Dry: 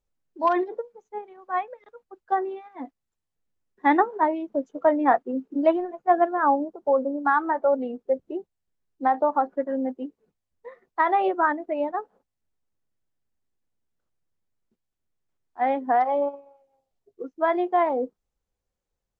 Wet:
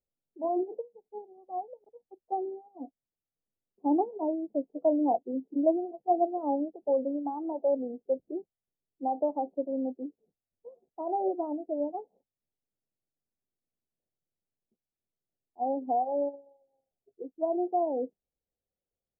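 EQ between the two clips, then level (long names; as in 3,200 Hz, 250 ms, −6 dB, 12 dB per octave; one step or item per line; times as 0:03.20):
Butterworth low-pass 770 Hz 48 dB per octave
dynamic equaliser 300 Hz, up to +4 dB, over −39 dBFS, Q 5
low-shelf EQ 78 Hz −11.5 dB
−5.0 dB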